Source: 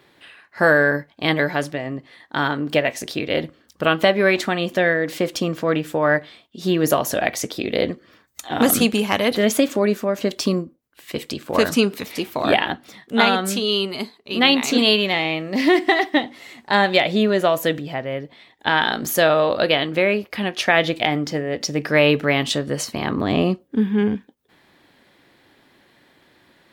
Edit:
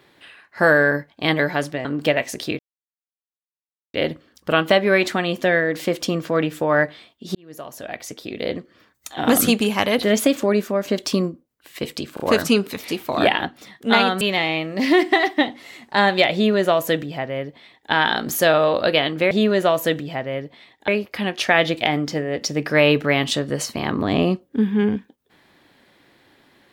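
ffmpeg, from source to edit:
-filter_complex "[0:a]asplit=9[s0][s1][s2][s3][s4][s5][s6][s7][s8];[s0]atrim=end=1.852[s9];[s1]atrim=start=2.528:end=3.27,asetpts=PTS-STARTPTS,afade=t=out:st=0.738:d=0.004:c=hsin,apad=pad_dur=1.35[s10];[s2]atrim=start=3.27:end=6.68,asetpts=PTS-STARTPTS,afade=t=in:d=0.004:c=hsin,afade=t=out:st=3.406:d=0.004:c=hsin[s11];[s3]atrim=start=6.68:end=11.502,asetpts=PTS-STARTPTS,afade=t=in:d=1.95[s12];[s4]atrim=start=11.468:end=11.502[s13];[s5]atrim=start=11.468:end=13.482[s14];[s6]atrim=start=14.968:end=20.072[s15];[s7]atrim=start=17.098:end=18.672[s16];[s8]atrim=start=20.068[s17];[s10][s11][s12]concat=n=3:v=0:a=1[s18];[s9][s18]acrossfade=d=0.004:c1=hsin:c2=hsin[s19];[s19][s13]acrossfade=d=0.004:c1=hsin:c2=hsin[s20];[s20][s14]acrossfade=d=0.004:c1=hsin:c2=hsin[s21];[s21][s15]acrossfade=d=0.004:c1=hsin:c2=hsin[s22];[s22][s16]acrossfade=d=0.004:c1=hsin:c2=hsin[s23];[s23][s17]acrossfade=d=0.004:c1=hsin:c2=hsin"

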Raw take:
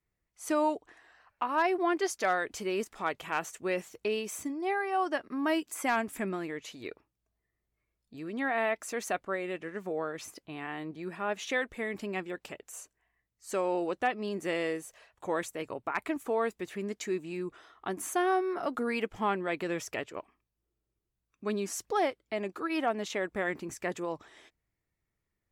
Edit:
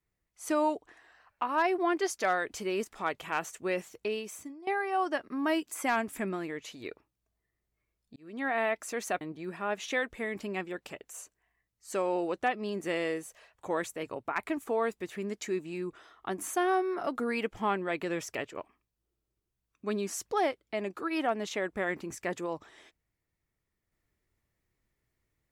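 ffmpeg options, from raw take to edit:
-filter_complex "[0:a]asplit=4[s0][s1][s2][s3];[s0]atrim=end=4.67,asetpts=PTS-STARTPTS,afade=t=out:st=3.66:d=1.01:c=qsin:silence=0.149624[s4];[s1]atrim=start=4.67:end=8.16,asetpts=PTS-STARTPTS,afade=t=in:d=0.004:c=hsin:silence=0.149624,afade=t=out:st=3.486:d=0.004:c=hsin[s5];[s2]atrim=start=8.16:end=9.212,asetpts=PTS-STARTPTS,afade=t=in:d=0.33[s6];[s3]atrim=start=10.798[s7];[s4][s5][s6]concat=n=3:v=0:a=1[s8];[s8][s7]acrossfade=d=0.004:c1=hsin:c2=hsin"

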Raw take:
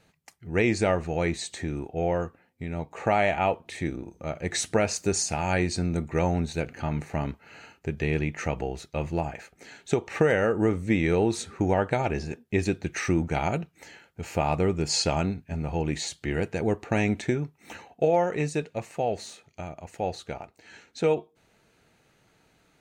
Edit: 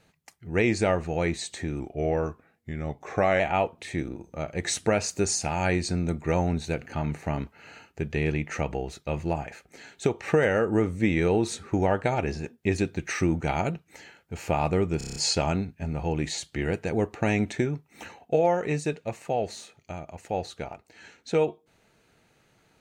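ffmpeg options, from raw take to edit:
-filter_complex "[0:a]asplit=9[s0][s1][s2][s3][s4][s5][s6][s7][s8];[s0]atrim=end=1.804[s9];[s1]atrim=start=1.8:end=3.27,asetpts=PTS-STARTPTS,asetrate=40572,aresample=44100,atrim=end_sample=70464,asetpts=PTS-STARTPTS[s10];[s2]atrim=start=3.266:end=14.882[s11];[s3]atrim=start=14.848:end=14.882[s12];[s4]atrim=start=14.848:end=14.882[s13];[s5]atrim=start=14.848:end=14.882[s14];[s6]atrim=start=14.848:end=14.882[s15];[s7]atrim=start=14.848:end=14.882[s16];[s8]atrim=start=14.848[s17];[s9][s10]acrossfade=d=0.004:c1=hsin:c2=hsin[s18];[s18][s11]acrossfade=d=0.004:c1=hsin:c2=hsin[s19];[s19][s12]acrossfade=d=0.004:c1=hsin:c2=hsin[s20];[s20][s13]acrossfade=d=0.004:c1=hsin:c2=hsin[s21];[s21][s14]acrossfade=d=0.004:c1=hsin:c2=hsin[s22];[s22][s15]acrossfade=d=0.004:c1=hsin:c2=hsin[s23];[s23][s16]acrossfade=d=0.004:c1=hsin:c2=hsin[s24];[s24][s17]acrossfade=d=0.004:c1=hsin:c2=hsin"

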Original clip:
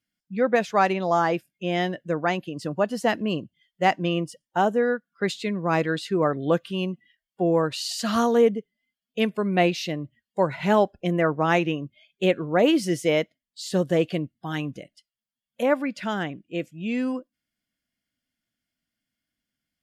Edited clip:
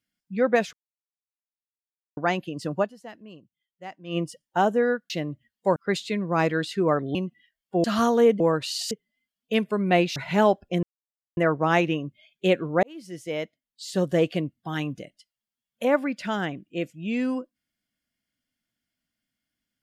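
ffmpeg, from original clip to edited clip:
-filter_complex "[0:a]asplit=14[s0][s1][s2][s3][s4][s5][s6][s7][s8][s9][s10][s11][s12][s13];[s0]atrim=end=0.73,asetpts=PTS-STARTPTS,afade=t=out:st=0.726:d=0.004:c=hsin[s14];[s1]atrim=start=0.73:end=2.17,asetpts=PTS-STARTPTS,volume=0[s15];[s2]atrim=start=2.17:end=2.95,asetpts=PTS-STARTPTS,afade=t=in:d=0.004:c=hsin,afade=t=out:st=0.64:d=0.14:c=qua:silence=0.112202[s16];[s3]atrim=start=2.95:end=4.03,asetpts=PTS-STARTPTS,volume=0.112[s17];[s4]atrim=start=4.03:end=5.102,asetpts=PTS-STARTPTS,afade=t=in:d=0.14:c=qua:silence=0.112202[s18];[s5]atrim=start=9.818:end=10.482[s19];[s6]atrim=start=5.098:end=6.492[s20];[s7]atrim=start=6.808:end=7.502[s21];[s8]atrim=start=8.008:end=8.572[s22];[s9]atrim=start=7.498:end=8.012[s23];[s10]atrim=start=8.568:end=9.822[s24];[s11]atrim=start=10.478:end=11.15,asetpts=PTS-STARTPTS,afade=t=out:st=0.668:d=0.004:c=hsin,apad=pad_dur=0.54[s25];[s12]atrim=start=11.15:end=12.61,asetpts=PTS-STARTPTS,afade=t=in:d=0.004:c=hsin,afade=t=out:st=1.456:d=0.004:c=hsin[s26];[s13]atrim=start=12.61,asetpts=PTS-STARTPTS,afade=t=in:d=1.35[s27];[s14][s15][s16][s17][s18]concat=n=5:v=0:a=1[s28];[s28][s19]acrossfade=d=0.004:c1=hsin:c2=hsin[s29];[s29][s20]acrossfade=d=0.004:c1=hsin:c2=hsin[s30];[s30][s21]acrossfade=d=0.004:c1=hsin:c2=hsin[s31];[s31][s22]acrossfade=d=0.004:c1=hsin:c2=hsin[s32];[s32][s23]acrossfade=d=0.004:c1=hsin:c2=hsin[s33];[s33][s24]acrossfade=d=0.004:c1=hsin:c2=hsin[s34];[s25][s26][s27]concat=n=3:v=0:a=1[s35];[s34][s35]acrossfade=d=0.004:c1=hsin:c2=hsin"

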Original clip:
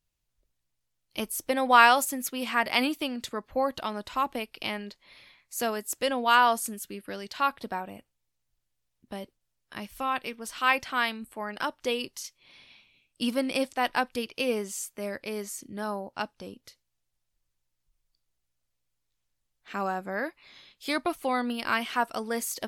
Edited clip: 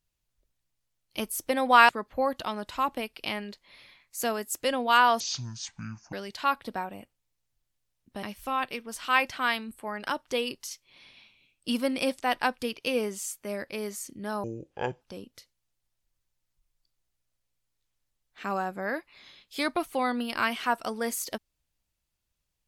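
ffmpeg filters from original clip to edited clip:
-filter_complex "[0:a]asplit=7[s0][s1][s2][s3][s4][s5][s6];[s0]atrim=end=1.892[s7];[s1]atrim=start=3.268:end=6.584[s8];[s2]atrim=start=6.58:end=7.09,asetpts=PTS-STARTPTS,asetrate=24255,aresample=44100[s9];[s3]atrim=start=7.086:end=9.192[s10];[s4]atrim=start=9.758:end=15.974[s11];[s5]atrim=start=15.97:end=16.31,asetpts=PTS-STARTPTS,asetrate=26019,aresample=44100[s12];[s6]atrim=start=16.306[s13];[s7][s8]acrossfade=d=0.004:c1=hsin:c2=hsin[s14];[s14][s9]acrossfade=d=0.004:c1=hsin:c2=hsin[s15];[s15][s10]acrossfade=d=0.004:c1=hsin:c2=hsin[s16];[s16][s11]acrossfade=d=0.004:c1=hsin:c2=hsin[s17];[s17][s12]acrossfade=d=0.004:c1=hsin:c2=hsin[s18];[s18][s13]acrossfade=d=0.004:c1=hsin:c2=hsin"

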